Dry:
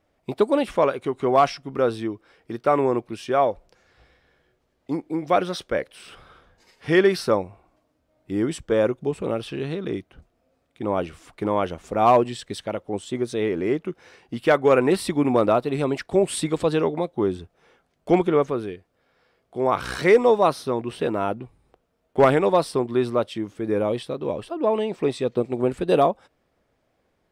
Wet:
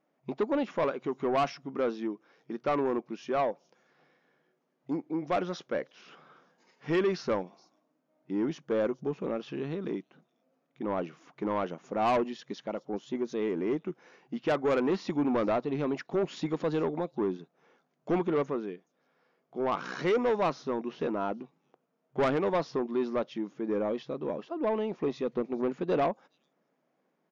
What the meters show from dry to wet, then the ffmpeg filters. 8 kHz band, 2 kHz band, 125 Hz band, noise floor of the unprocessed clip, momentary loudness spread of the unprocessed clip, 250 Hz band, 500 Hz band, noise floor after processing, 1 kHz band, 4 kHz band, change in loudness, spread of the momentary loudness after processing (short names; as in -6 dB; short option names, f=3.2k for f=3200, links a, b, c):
under -15 dB, -9.0 dB, -9.5 dB, -70 dBFS, 13 LU, -6.5 dB, -9.0 dB, -77 dBFS, -9.5 dB, -10.0 dB, -8.5 dB, 11 LU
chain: -filter_complex "[0:a]afftfilt=real='re*between(b*sr/4096,130,7100)':imag='im*between(b*sr/4096,130,7100)':win_size=4096:overlap=0.75,equalizer=f=250:t=o:w=1:g=4,equalizer=f=1k:t=o:w=1:g=3,equalizer=f=4k:t=o:w=1:g=-5,acrossover=split=4100[a][b];[a]asoftclip=type=tanh:threshold=-14dB[c];[b]aecho=1:1:422:0.15[d];[c][d]amix=inputs=2:normalize=0,volume=-7.5dB"